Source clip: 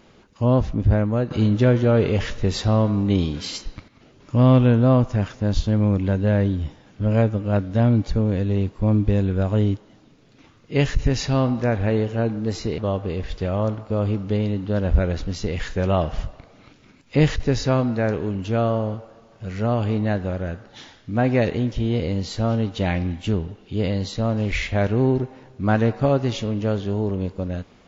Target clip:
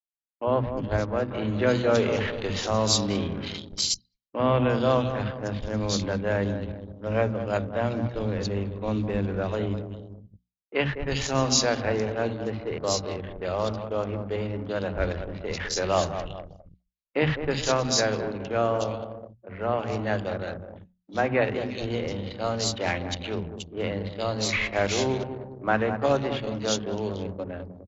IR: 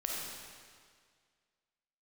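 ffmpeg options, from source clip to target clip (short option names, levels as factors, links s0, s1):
-filter_complex "[0:a]asplit=2[s0][s1];[s1]adelay=204,lowpass=f=1500:p=1,volume=0.355,asplit=2[s2][s3];[s3]adelay=204,lowpass=f=1500:p=1,volume=0.52,asplit=2[s4][s5];[s5]adelay=204,lowpass=f=1500:p=1,volume=0.52,asplit=2[s6][s7];[s7]adelay=204,lowpass=f=1500:p=1,volume=0.52,asplit=2[s8][s9];[s9]adelay=204,lowpass=f=1500:p=1,volume=0.52,asplit=2[s10][s11];[s11]adelay=204,lowpass=f=1500:p=1,volume=0.52[s12];[s2][s4][s6][s8][s10][s12]amix=inputs=6:normalize=0[s13];[s0][s13]amix=inputs=2:normalize=0,agate=range=0.00794:threshold=0.0158:ratio=16:detection=peak,asplit=3[s14][s15][s16];[s15]asetrate=22050,aresample=44100,atempo=2,volume=0.178[s17];[s16]asetrate=37084,aresample=44100,atempo=1.18921,volume=0.126[s18];[s14][s17][s18]amix=inputs=3:normalize=0,lowshelf=f=140:g=3.5,acrossover=split=250|3000[s19][s20][s21];[s19]adelay=60[s22];[s21]adelay=360[s23];[s22][s20][s23]amix=inputs=3:normalize=0,anlmdn=10,bandreject=f=60:t=h:w=6,bandreject=f=120:t=h:w=6,bandreject=f=180:t=h:w=6,bandreject=f=240:t=h:w=6,areverse,acompressor=mode=upward:threshold=0.0282:ratio=2.5,areverse,aemphasis=mode=production:type=riaa"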